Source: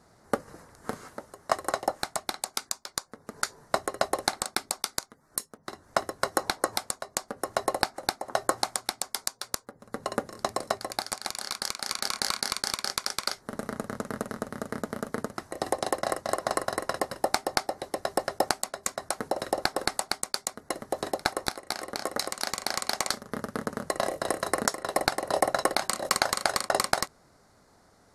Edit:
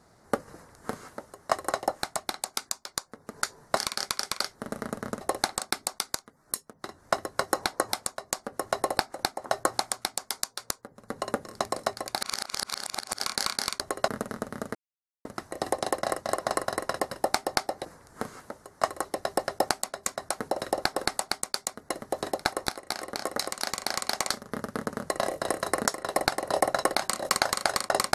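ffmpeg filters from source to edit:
ffmpeg -i in.wav -filter_complex "[0:a]asplit=11[link_01][link_02][link_03][link_04][link_05][link_06][link_07][link_08][link_09][link_10][link_11];[link_01]atrim=end=3.772[link_12];[link_02]atrim=start=12.638:end=14.082[link_13];[link_03]atrim=start=4.048:end=11.052[link_14];[link_04]atrim=start=11.048:end=12.042,asetpts=PTS-STARTPTS,areverse[link_15];[link_05]atrim=start=12.038:end=12.642[link_16];[link_06]atrim=start=3.768:end=4.052[link_17];[link_07]atrim=start=14.078:end=14.75,asetpts=PTS-STARTPTS,afade=type=out:start_time=0.668:duration=0.004:curve=hsin[link_18];[link_08]atrim=start=14.75:end=15.25,asetpts=PTS-STARTPTS,volume=0[link_19];[link_09]atrim=start=15.25:end=17.852,asetpts=PTS-STARTPTS,afade=type=in:duration=0.004:curve=hsin[link_20];[link_10]atrim=start=0.528:end=1.732[link_21];[link_11]atrim=start=17.848[link_22];[link_12][link_13]acrossfade=duration=0.004:curve1=hsin:curve2=hsin[link_23];[link_23][link_14]acrossfade=duration=0.004:curve1=hsin:curve2=hsin[link_24];[link_24][link_15]acrossfade=duration=0.004:curve1=hsin:curve2=hsin[link_25];[link_25][link_16]acrossfade=duration=0.004:curve1=hsin:curve2=hsin[link_26];[link_26][link_17]acrossfade=duration=0.004:curve1=hsin:curve2=hsin[link_27];[link_18][link_19][link_20]concat=n=3:v=0:a=1[link_28];[link_27][link_28]acrossfade=duration=0.004:curve1=hsin:curve2=hsin[link_29];[link_29][link_21]acrossfade=duration=0.004:curve1=hsin:curve2=hsin[link_30];[link_30][link_22]acrossfade=duration=0.004:curve1=hsin:curve2=hsin" out.wav

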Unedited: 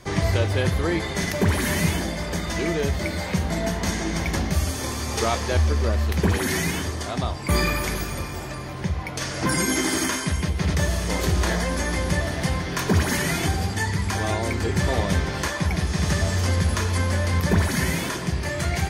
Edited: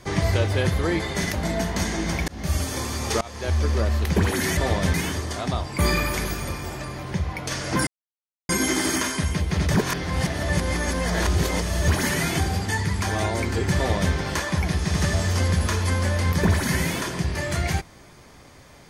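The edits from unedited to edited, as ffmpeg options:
ffmpeg -i in.wav -filter_complex "[0:a]asplit=9[link_01][link_02][link_03][link_04][link_05][link_06][link_07][link_08][link_09];[link_01]atrim=end=1.352[link_10];[link_02]atrim=start=3.418:end=4.35,asetpts=PTS-STARTPTS,afade=type=out:start_time=0.928:duration=0.004:curve=hsin[link_11];[link_03]atrim=start=4.35:end=5.28,asetpts=PTS-STARTPTS,afade=type=in:duration=0.27,afade=type=out:start_time=0.926:duration=0.004:curve=hsin:silence=0.0707946[link_12];[link_04]atrim=start=5.28:end=6.642,asetpts=PTS-STARTPTS,afade=type=in:duration=0.46:silence=0.0707946[link_13];[link_05]atrim=start=14.838:end=15.212[link_14];[link_06]atrim=start=6.638:end=9.57,asetpts=PTS-STARTPTS,afade=type=out:start_time=2.928:duration=0.004:curve=hsin,apad=pad_dur=0.62[link_15];[link_07]atrim=start=9.57:end=10.822,asetpts=PTS-STARTPTS,afade=type=in:duration=0.004:curve=hsin[link_16];[link_08]atrim=start=10.818:end=12.962,asetpts=PTS-STARTPTS,areverse[link_17];[link_09]atrim=start=12.958[link_18];[link_11][link_12][link_13]concat=n=3:v=0:a=1[link_19];[link_10][link_19]acrossfade=duration=0.004:curve1=hsin:curve2=hsin[link_20];[link_20][link_14]acrossfade=duration=0.004:curve1=hsin:curve2=hsin[link_21];[link_15][link_16]concat=n=2:v=0:a=1[link_22];[link_21][link_22]acrossfade=duration=0.004:curve1=hsin:curve2=hsin[link_23];[link_23][link_17]acrossfade=duration=0.004:curve1=hsin:curve2=hsin[link_24];[link_24][link_18]acrossfade=duration=0.004:curve1=hsin:curve2=hsin" out.wav

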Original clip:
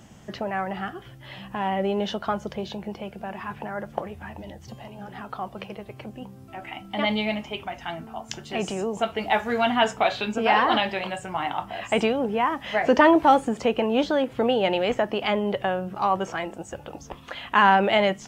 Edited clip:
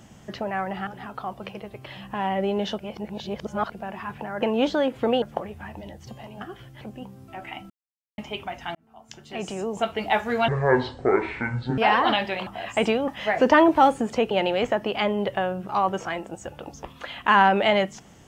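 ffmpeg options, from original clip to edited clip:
ffmpeg -i in.wav -filter_complex "[0:a]asplit=17[link_01][link_02][link_03][link_04][link_05][link_06][link_07][link_08][link_09][link_10][link_11][link_12][link_13][link_14][link_15][link_16][link_17];[link_01]atrim=end=0.872[link_18];[link_02]atrim=start=5.018:end=6.012[link_19];[link_03]atrim=start=1.268:end=2.202[link_20];[link_04]atrim=start=2.198:end=3.132,asetpts=PTS-STARTPTS,areverse[link_21];[link_05]atrim=start=3.128:end=3.832[link_22];[link_06]atrim=start=13.778:end=14.582[link_23];[link_07]atrim=start=3.828:end=5.022[link_24];[link_08]atrim=start=0.868:end=1.272[link_25];[link_09]atrim=start=6.008:end=6.9,asetpts=PTS-STARTPTS,afade=type=out:start_time=0.888:duration=0.004:curve=hsin[link_26];[link_10]atrim=start=6.9:end=7.38,asetpts=PTS-STARTPTS,volume=0[link_27];[link_11]atrim=start=7.38:end=7.95,asetpts=PTS-STARTPTS,afade=type=in:duration=0.004:curve=hsin,afade=type=out:start_time=0.566:duration=0.004:curve=hsin[link_28];[link_12]atrim=start=7.95:end=9.684,asetpts=PTS-STARTPTS,afade=type=in:duration=1.06[link_29];[link_13]atrim=start=9.68:end=10.42,asetpts=PTS-STARTPTS,asetrate=25137,aresample=44100[link_30];[link_14]atrim=start=10.416:end=11.112[link_31];[link_15]atrim=start=11.618:end=12.232[link_32];[link_16]atrim=start=12.548:end=13.782[link_33];[link_17]atrim=start=14.578[link_34];[link_18][link_19]acrossfade=duration=0.004:curve1=hsin:curve2=hsin[link_35];[link_35][link_20]acrossfade=duration=0.004:curve1=hsin:curve2=hsin[link_36];[link_36][link_21]acrossfade=duration=0.004:curve1=hsin:curve2=hsin[link_37];[link_37][link_22]acrossfade=duration=0.004:curve1=hsin:curve2=hsin[link_38];[link_38][link_23]acrossfade=duration=0.004:curve1=hsin:curve2=hsin[link_39];[link_39][link_24]acrossfade=duration=0.004:curve1=hsin:curve2=hsin[link_40];[link_40][link_25]acrossfade=duration=0.004:curve1=hsin:curve2=hsin[link_41];[link_26][link_27][link_28][link_29]concat=n=4:v=0:a=1[link_42];[link_41][link_42]acrossfade=duration=0.004:curve1=hsin:curve2=hsin[link_43];[link_43][link_30]acrossfade=duration=0.004:curve1=hsin:curve2=hsin[link_44];[link_44][link_31]acrossfade=duration=0.004:curve1=hsin:curve2=hsin[link_45];[link_45][link_32]acrossfade=duration=0.004:curve1=hsin:curve2=hsin[link_46];[link_46][link_33]acrossfade=duration=0.004:curve1=hsin:curve2=hsin[link_47];[link_47][link_34]acrossfade=duration=0.004:curve1=hsin:curve2=hsin" out.wav

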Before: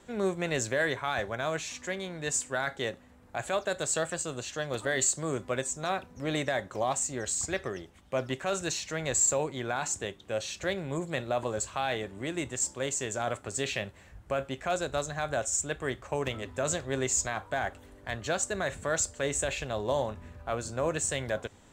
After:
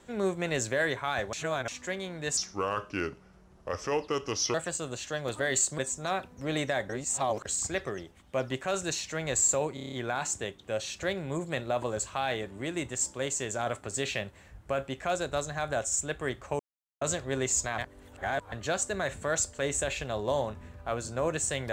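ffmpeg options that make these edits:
ffmpeg -i in.wav -filter_complex "[0:a]asplit=18[link_01][link_02][link_03][link_04][link_05][link_06][link_07][link_08][link_09][link_10][link_11][link_12][link_13][link_14][link_15][link_16][link_17][link_18];[link_01]atrim=end=1.332[link_19];[link_02]atrim=start=1.328:end=1.682,asetpts=PTS-STARTPTS,areverse[link_20];[link_03]atrim=start=1.678:end=2.374[link_21];[link_04]atrim=start=2.37:end=4,asetpts=PTS-STARTPTS,asetrate=33075,aresample=44100[link_22];[link_05]atrim=start=3.996:end=5.242[link_23];[link_06]atrim=start=5.568:end=6.682[link_24];[link_07]atrim=start=6.678:end=7.242,asetpts=PTS-STARTPTS,areverse[link_25];[link_08]atrim=start=7.238:end=9.562[link_26];[link_09]atrim=start=9.528:end=9.562[link_27];[link_10]atrim=start=9.528:end=9.562[link_28];[link_11]atrim=start=9.528:end=9.562[link_29];[link_12]atrim=start=9.528:end=9.562[link_30];[link_13]atrim=start=9.528:end=9.562[link_31];[link_14]atrim=start=9.528:end=16.2,asetpts=PTS-STARTPTS,afade=type=out:start_time=6.668:duration=0.004:curve=hsin[link_32];[link_15]atrim=start=16.2:end=16.62,asetpts=PTS-STARTPTS,volume=0[link_33];[link_16]atrim=start=16.62:end=17.392,asetpts=PTS-STARTPTS,afade=type=in:duration=0.004:curve=hsin[link_34];[link_17]atrim=start=17.388:end=18.132,asetpts=PTS-STARTPTS,areverse[link_35];[link_18]atrim=start=18.128[link_36];[link_19][link_20]acrossfade=duration=0.004:curve1=hsin:curve2=hsin[link_37];[link_37][link_21]acrossfade=duration=0.004:curve1=hsin:curve2=hsin[link_38];[link_38][link_22]acrossfade=duration=0.004:curve1=hsin:curve2=hsin[link_39];[link_39][link_23]acrossfade=duration=0.004:curve1=hsin:curve2=hsin[link_40];[link_40][link_24]acrossfade=duration=0.004:curve1=hsin:curve2=hsin[link_41];[link_41][link_25]acrossfade=duration=0.004:curve1=hsin:curve2=hsin[link_42];[link_42][link_26]acrossfade=duration=0.004:curve1=hsin:curve2=hsin[link_43];[link_43][link_27]acrossfade=duration=0.004:curve1=hsin:curve2=hsin[link_44];[link_44][link_28]acrossfade=duration=0.004:curve1=hsin:curve2=hsin[link_45];[link_45][link_29]acrossfade=duration=0.004:curve1=hsin:curve2=hsin[link_46];[link_46][link_30]acrossfade=duration=0.004:curve1=hsin:curve2=hsin[link_47];[link_47][link_31]acrossfade=duration=0.004:curve1=hsin:curve2=hsin[link_48];[link_32][link_33][link_34]concat=n=3:v=0:a=1[link_49];[link_48][link_49]acrossfade=duration=0.004:curve1=hsin:curve2=hsin[link_50];[link_50][link_35]acrossfade=duration=0.004:curve1=hsin:curve2=hsin[link_51];[link_51][link_36]acrossfade=duration=0.004:curve1=hsin:curve2=hsin" out.wav

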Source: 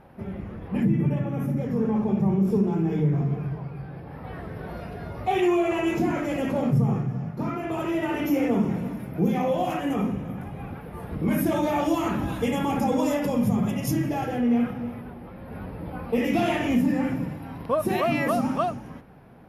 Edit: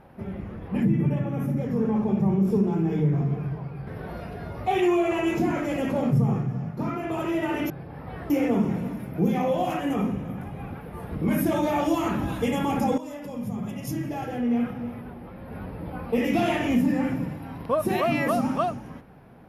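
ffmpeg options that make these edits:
ffmpeg -i in.wav -filter_complex "[0:a]asplit=5[link_01][link_02][link_03][link_04][link_05];[link_01]atrim=end=3.872[link_06];[link_02]atrim=start=4.468:end=8.302[link_07];[link_03]atrim=start=3.868:end=4.472[link_08];[link_04]atrim=start=8.298:end=12.98,asetpts=PTS-STARTPTS,afade=type=out:start_time=4.678:duration=0.004:curve=hsin:silence=0.177828[link_09];[link_05]atrim=start=12.98,asetpts=PTS-STARTPTS,afade=type=in:duration=2.15:silence=0.177828[link_10];[link_06][link_07]acrossfade=duration=0.004:curve1=hsin:curve2=hsin[link_11];[link_11][link_08]acrossfade=duration=0.004:curve1=hsin:curve2=hsin[link_12];[link_09][link_10]concat=n=2:v=0:a=1[link_13];[link_12][link_13]acrossfade=duration=0.004:curve1=hsin:curve2=hsin" out.wav

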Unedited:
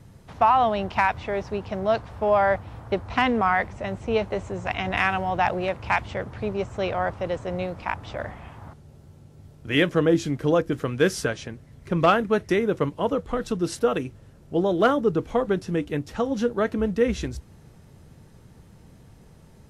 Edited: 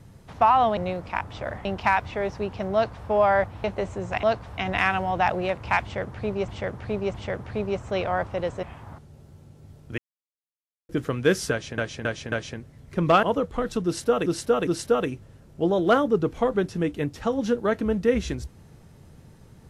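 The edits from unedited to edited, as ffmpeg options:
ffmpeg -i in.wav -filter_complex "[0:a]asplit=17[link_01][link_02][link_03][link_04][link_05][link_06][link_07][link_08][link_09][link_10][link_11][link_12][link_13][link_14][link_15][link_16][link_17];[link_01]atrim=end=0.772[link_18];[link_02]atrim=start=7.498:end=8.382[link_19];[link_03]atrim=start=0.768:end=2.762[link_20];[link_04]atrim=start=4.178:end=4.772[link_21];[link_05]atrim=start=1.858:end=2.212[link_22];[link_06]atrim=start=4.768:end=6.672[link_23];[link_07]atrim=start=6.008:end=6.672[link_24];[link_08]atrim=start=6.008:end=7.502[link_25];[link_09]atrim=start=8.378:end=9.73,asetpts=PTS-STARTPTS,afade=type=out:start_time=1.348:duration=0.004:curve=hsin[link_26];[link_10]atrim=start=9.73:end=10.64,asetpts=PTS-STARTPTS,volume=0[link_27];[link_11]atrim=start=10.64:end=11.532,asetpts=PTS-STARTPTS,afade=type=in:duration=0.004:curve=hsin[link_28];[link_12]atrim=start=11.258:end=11.532[link_29];[link_13]atrim=start=11.258:end=11.532[link_30];[link_14]atrim=start=11.258:end=12.172[link_31];[link_15]atrim=start=12.978:end=14.012[link_32];[link_16]atrim=start=13.598:end=14.012[link_33];[link_17]atrim=start=13.598[link_34];[link_18][link_19]acrossfade=duration=0.004:curve1=hsin:curve2=hsin[link_35];[link_35][link_20]acrossfade=duration=0.004:curve1=hsin:curve2=hsin[link_36];[link_36][link_21]acrossfade=duration=0.004:curve1=hsin:curve2=hsin[link_37];[link_37][link_22]acrossfade=duration=0.004:curve1=hsin:curve2=hsin[link_38];[link_38][link_23]acrossfade=duration=0.004:curve1=hsin:curve2=hsin[link_39];[link_39][link_24]acrossfade=duration=0.004:curve1=hsin:curve2=hsin[link_40];[link_40][link_25]acrossfade=duration=0.004:curve1=hsin:curve2=hsin[link_41];[link_26][link_27][link_28]concat=n=3:v=0:a=1[link_42];[link_41][link_42]acrossfade=duration=0.004:curve1=hsin:curve2=hsin[link_43];[link_43][link_29]acrossfade=duration=0.004:curve1=hsin:curve2=hsin[link_44];[link_44][link_30]acrossfade=duration=0.004:curve1=hsin:curve2=hsin[link_45];[link_45][link_31]acrossfade=duration=0.004:curve1=hsin:curve2=hsin[link_46];[link_46][link_32]acrossfade=duration=0.004:curve1=hsin:curve2=hsin[link_47];[link_47][link_33]acrossfade=duration=0.004:curve1=hsin:curve2=hsin[link_48];[link_48][link_34]acrossfade=duration=0.004:curve1=hsin:curve2=hsin" out.wav

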